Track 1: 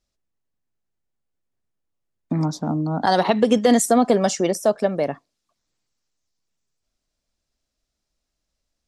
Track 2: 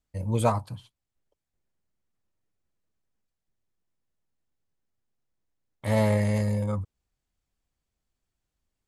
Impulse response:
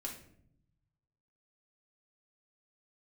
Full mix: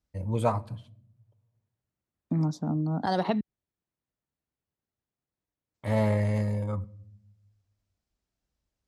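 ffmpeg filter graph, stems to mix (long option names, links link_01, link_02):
-filter_complex "[0:a]lowshelf=frequency=270:gain=11,volume=-11.5dB,asplit=3[link_01][link_02][link_03];[link_01]atrim=end=3.41,asetpts=PTS-STARTPTS,afade=type=out:start_time=3.406:duration=0.004:curve=hsin[link_04];[link_02]atrim=start=3.41:end=5.74,asetpts=PTS-STARTPTS,volume=0[link_05];[link_03]atrim=start=5.74,asetpts=PTS-STARTPTS,afade=type=in:duration=0.004:curve=hsin[link_06];[link_04][link_05][link_06]concat=n=3:v=0:a=1[link_07];[1:a]highshelf=frequency=4000:gain=-9.5,volume=-3dB,asplit=2[link_08][link_09];[link_09]volume=-12.5dB[link_10];[2:a]atrim=start_sample=2205[link_11];[link_10][link_11]afir=irnorm=-1:irlink=0[link_12];[link_07][link_08][link_12]amix=inputs=3:normalize=0,highpass=46"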